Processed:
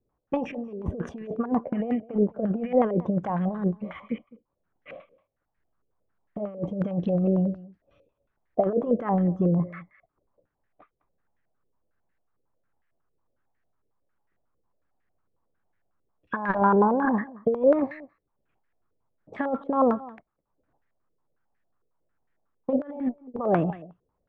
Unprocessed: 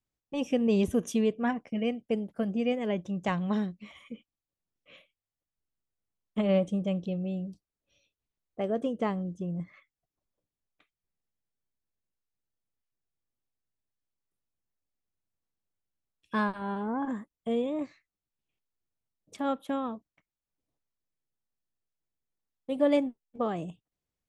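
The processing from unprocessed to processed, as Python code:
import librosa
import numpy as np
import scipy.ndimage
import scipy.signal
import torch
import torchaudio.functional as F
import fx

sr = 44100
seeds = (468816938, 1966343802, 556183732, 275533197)

p1 = fx.over_compress(x, sr, threshold_db=-33.0, ratio=-0.5)
p2 = p1 + fx.echo_single(p1, sr, ms=208, db=-20.5, dry=0)
p3 = fx.filter_held_lowpass(p2, sr, hz=11.0, low_hz=470.0, high_hz=1800.0)
y = p3 * librosa.db_to_amplitude(7.0)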